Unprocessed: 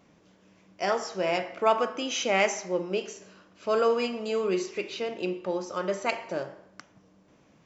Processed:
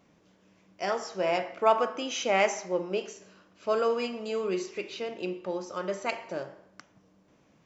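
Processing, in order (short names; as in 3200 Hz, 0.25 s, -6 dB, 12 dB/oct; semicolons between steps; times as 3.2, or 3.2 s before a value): 1.14–3.73 dynamic EQ 810 Hz, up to +4 dB, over -36 dBFS, Q 0.74; gain -3 dB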